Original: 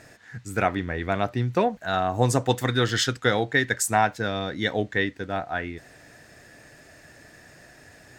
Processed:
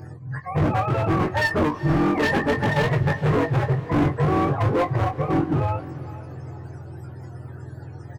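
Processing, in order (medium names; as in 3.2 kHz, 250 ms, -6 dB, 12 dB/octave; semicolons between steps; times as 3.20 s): spectrum inverted on a logarithmic axis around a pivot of 470 Hz; high-order bell 2.9 kHz -14 dB 1.1 oct; in parallel at -0.5 dB: peak limiter -19 dBFS, peak gain reduction 9.5 dB; on the sum: hard clipper -23 dBFS, distortion -6 dB; doubling 21 ms -6.5 dB; on a send: echo that smears into a reverb 457 ms, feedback 40%, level -15.5 dB; on the sum: trim +4.5 dB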